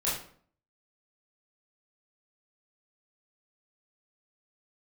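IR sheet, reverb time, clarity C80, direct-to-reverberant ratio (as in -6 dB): 0.55 s, 8.5 dB, -8.5 dB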